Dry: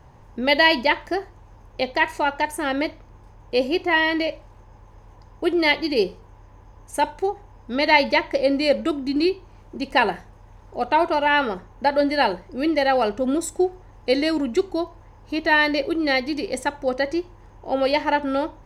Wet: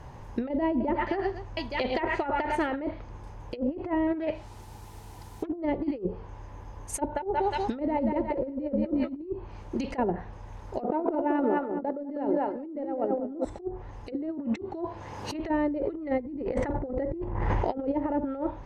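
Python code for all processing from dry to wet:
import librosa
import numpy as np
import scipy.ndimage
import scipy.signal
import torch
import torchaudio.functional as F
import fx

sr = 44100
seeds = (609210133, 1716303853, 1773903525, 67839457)

y = fx.chain(x, sr, fx.high_shelf(hz=5100.0, db=-5.5),
    fx.transient(attack_db=-7, sustain_db=-1),
    fx.echo_multitap(ms=(78, 101, 109, 229, 869), db=(-17.5, -11.0, -14.0, -19.5, -15.0)), at=(0.7, 2.8))
y = fx.chain(y, sr, fx.notch_comb(f0_hz=550.0),
    fx.quant_dither(seeds[0], bits=10, dither='triangular'),
    fx.doppler_dist(depth_ms=0.28), at=(4.07, 5.62))
y = fx.chain(y, sr, fx.echo_thinned(ms=179, feedback_pct=53, hz=470.0, wet_db=-6.5),
    fx.band_squash(depth_pct=40), at=(6.97, 9.22))
y = fx.chain(y, sr, fx.steep_highpass(hz=230.0, slope=36),
    fx.echo_filtered(ms=197, feedback_pct=37, hz=1800.0, wet_db=-6.0),
    fx.pre_swell(db_per_s=29.0), at=(10.79, 13.45))
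y = fx.chain(y, sr, fx.highpass(hz=92.0, slope=12),
    fx.band_squash(depth_pct=70), at=(14.12, 15.34))
y = fx.chain(y, sr, fx.median_filter(points=3),
    fx.peak_eq(hz=2000.0, db=7.0, octaves=0.23),
    fx.sustainer(db_per_s=23.0), at=(15.85, 17.78))
y = fx.env_lowpass_down(y, sr, base_hz=400.0, full_db=-16.5)
y = fx.over_compress(y, sr, threshold_db=-28.0, ratio=-0.5)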